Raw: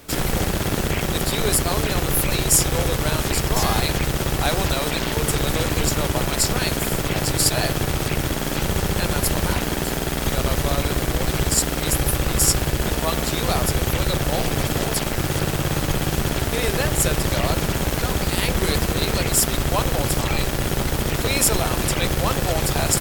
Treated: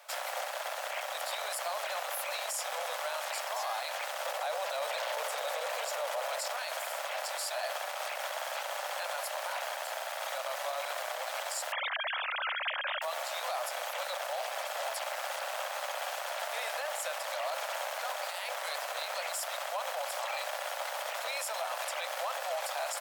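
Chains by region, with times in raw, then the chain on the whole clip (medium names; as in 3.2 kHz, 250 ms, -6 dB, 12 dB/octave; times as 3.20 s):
4.25–6.48 s: peaking EQ 490 Hz +8 dB 0.6 oct + level flattener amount 100%
11.72–13.02 s: formants replaced by sine waves + high-pass 1.3 kHz
whole clip: steep high-pass 570 Hz 72 dB/octave; tilt EQ -2.5 dB/octave; peak limiter -21.5 dBFS; trim -4.5 dB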